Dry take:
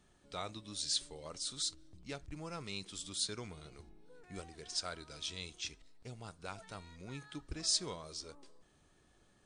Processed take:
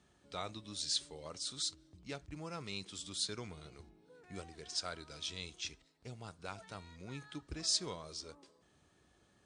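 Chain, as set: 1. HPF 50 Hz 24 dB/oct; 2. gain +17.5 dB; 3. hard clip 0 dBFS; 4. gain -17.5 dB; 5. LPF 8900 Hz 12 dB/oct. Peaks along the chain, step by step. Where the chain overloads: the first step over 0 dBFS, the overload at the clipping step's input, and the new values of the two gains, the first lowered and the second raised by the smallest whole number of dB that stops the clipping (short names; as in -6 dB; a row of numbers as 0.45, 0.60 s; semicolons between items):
-20.0, -2.5, -2.5, -20.0, -20.0 dBFS; no overload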